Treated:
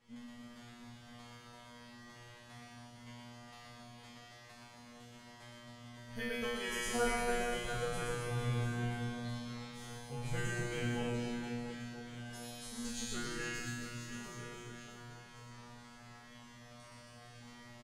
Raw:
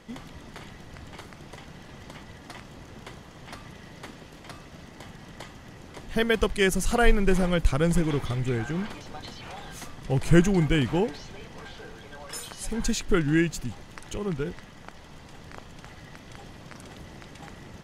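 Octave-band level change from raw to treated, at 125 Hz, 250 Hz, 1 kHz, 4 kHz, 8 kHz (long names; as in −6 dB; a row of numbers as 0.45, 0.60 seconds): −12.5, −15.0, −8.0, −8.5, −7.5 decibels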